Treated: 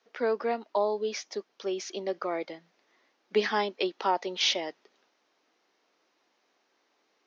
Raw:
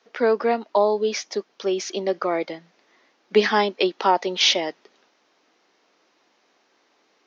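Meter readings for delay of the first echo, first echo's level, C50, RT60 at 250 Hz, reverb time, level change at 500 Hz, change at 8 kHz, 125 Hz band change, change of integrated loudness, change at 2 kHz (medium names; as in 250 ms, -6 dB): no echo, no echo, no reverb, no reverb, no reverb, -8.5 dB, no reading, no reading, -8.0 dB, -8.0 dB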